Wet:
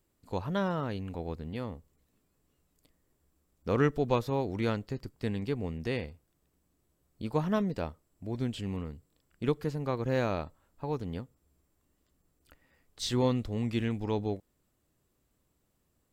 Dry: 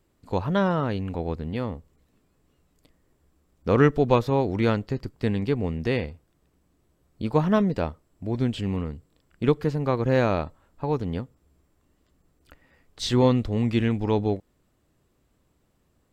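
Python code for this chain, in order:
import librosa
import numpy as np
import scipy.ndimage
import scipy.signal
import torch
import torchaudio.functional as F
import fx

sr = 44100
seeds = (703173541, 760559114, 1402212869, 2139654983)

y = fx.high_shelf(x, sr, hz=6500.0, db=10.0)
y = y * 10.0 ** (-8.0 / 20.0)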